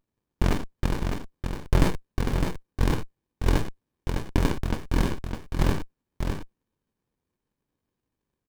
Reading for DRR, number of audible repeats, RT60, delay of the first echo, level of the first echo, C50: no reverb, 1, no reverb, 607 ms, -5.5 dB, no reverb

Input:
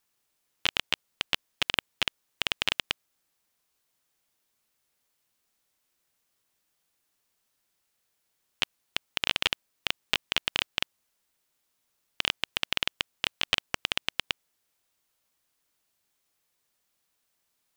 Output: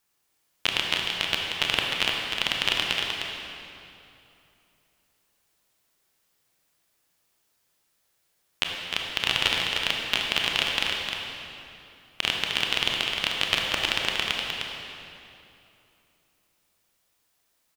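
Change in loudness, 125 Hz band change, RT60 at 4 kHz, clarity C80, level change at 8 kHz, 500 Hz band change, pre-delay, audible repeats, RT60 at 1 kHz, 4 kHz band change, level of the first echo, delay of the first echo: +4.5 dB, +6.5 dB, 2.2 s, -0.5 dB, +5.0 dB, +6.5 dB, 24 ms, 1, 2.8 s, +5.0 dB, -5.5 dB, 306 ms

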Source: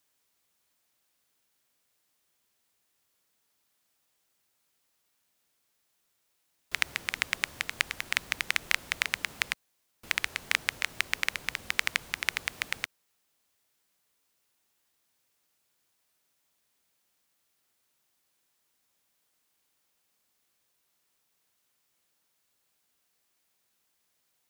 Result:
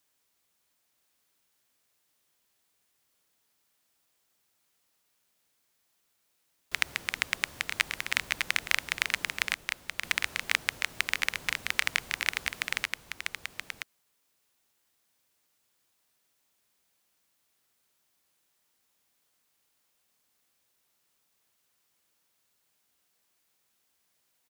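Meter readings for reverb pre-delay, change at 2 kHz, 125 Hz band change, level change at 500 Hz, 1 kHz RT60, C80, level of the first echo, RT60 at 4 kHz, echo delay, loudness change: no reverb, +1.0 dB, +1.0 dB, +1.0 dB, no reverb, no reverb, -6.0 dB, no reverb, 977 ms, +0.5 dB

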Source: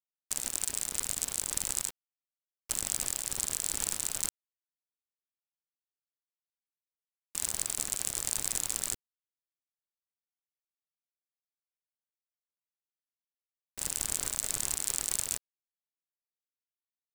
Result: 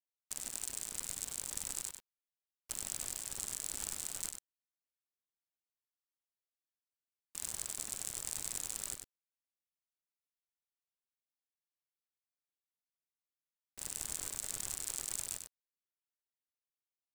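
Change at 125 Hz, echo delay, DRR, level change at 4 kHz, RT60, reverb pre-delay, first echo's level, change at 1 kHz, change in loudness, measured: -7.5 dB, 96 ms, no reverb, -7.5 dB, no reverb, no reverb, -7.0 dB, -7.5 dB, -7.5 dB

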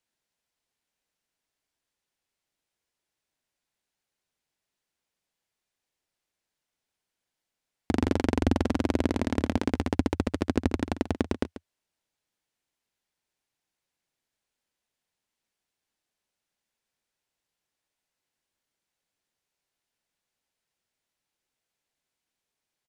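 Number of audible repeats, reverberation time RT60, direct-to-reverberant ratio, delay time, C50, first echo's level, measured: 1, no reverb, no reverb, 138 ms, no reverb, -13.5 dB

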